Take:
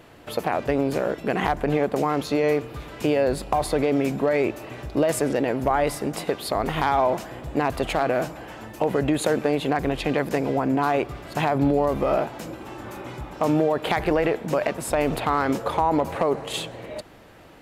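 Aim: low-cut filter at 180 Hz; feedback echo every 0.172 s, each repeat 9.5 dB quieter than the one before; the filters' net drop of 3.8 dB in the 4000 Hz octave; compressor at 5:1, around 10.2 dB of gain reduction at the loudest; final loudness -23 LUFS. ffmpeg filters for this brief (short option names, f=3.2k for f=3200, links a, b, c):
-af "highpass=180,equalizer=f=4k:t=o:g=-5,acompressor=threshold=-29dB:ratio=5,aecho=1:1:172|344|516|688:0.335|0.111|0.0365|0.012,volume=10dB"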